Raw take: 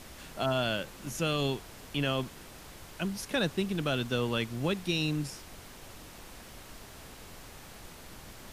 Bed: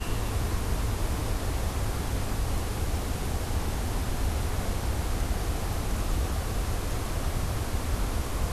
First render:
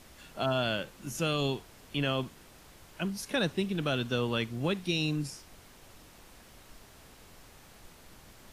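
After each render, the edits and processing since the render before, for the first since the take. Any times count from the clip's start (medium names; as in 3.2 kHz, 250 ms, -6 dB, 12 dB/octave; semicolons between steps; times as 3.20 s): noise print and reduce 6 dB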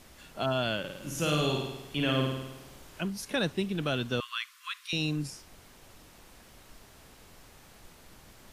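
0.79–3.01 s: flutter echo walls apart 9.1 m, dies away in 0.97 s; 4.20–4.93 s: brick-wall FIR high-pass 990 Hz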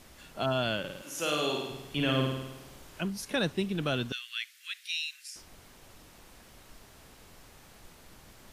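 1.01–1.69 s: high-pass 510 Hz -> 230 Hz; 4.12–5.36 s: steep high-pass 1.7 kHz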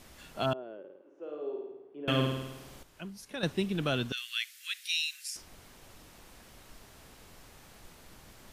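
0.53–2.08 s: ladder band-pass 430 Hz, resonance 65%; 2.83–3.43 s: gain -9.5 dB; 4.17–5.37 s: treble shelf 4.5 kHz +7.5 dB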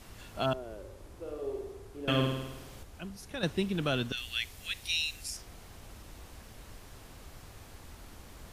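add bed -22.5 dB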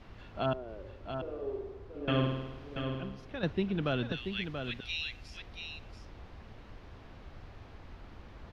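distance through air 260 m; delay 683 ms -7 dB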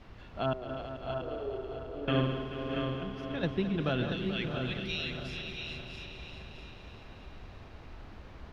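backward echo that repeats 306 ms, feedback 62%, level -9.5 dB; multi-head delay 217 ms, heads all three, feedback 47%, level -13 dB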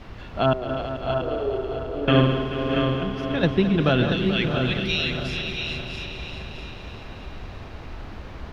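trim +11 dB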